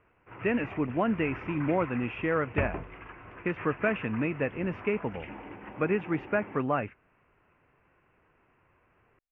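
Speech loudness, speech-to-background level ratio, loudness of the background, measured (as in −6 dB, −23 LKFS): −30.5 LKFS, 11.5 dB, −42.0 LKFS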